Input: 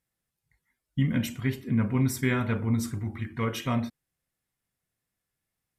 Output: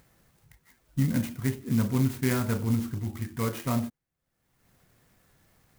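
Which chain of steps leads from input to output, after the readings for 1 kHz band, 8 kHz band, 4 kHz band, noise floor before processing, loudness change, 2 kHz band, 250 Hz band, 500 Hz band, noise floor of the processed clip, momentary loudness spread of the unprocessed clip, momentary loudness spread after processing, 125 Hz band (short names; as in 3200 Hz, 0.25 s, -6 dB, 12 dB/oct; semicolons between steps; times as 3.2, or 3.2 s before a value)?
-1.5 dB, 0.0 dB, -3.0 dB, -85 dBFS, -0.5 dB, -4.0 dB, 0.0 dB, 0.0 dB, -84 dBFS, 8 LU, 8 LU, 0.0 dB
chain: bell 6700 Hz -11.5 dB 1.5 oct; upward compressor, threshold -43 dBFS; clock jitter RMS 0.07 ms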